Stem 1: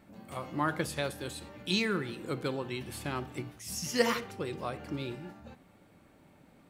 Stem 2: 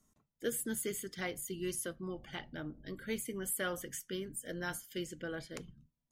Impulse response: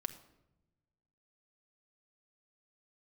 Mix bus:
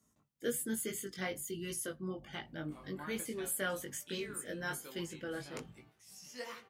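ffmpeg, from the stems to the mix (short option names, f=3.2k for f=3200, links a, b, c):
-filter_complex "[0:a]lowshelf=f=260:g=-11,adelay=2400,volume=-12.5dB[a];[1:a]highpass=66,volume=3dB[b];[a][b]amix=inputs=2:normalize=0,flanger=delay=18:depth=3.1:speed=1.2"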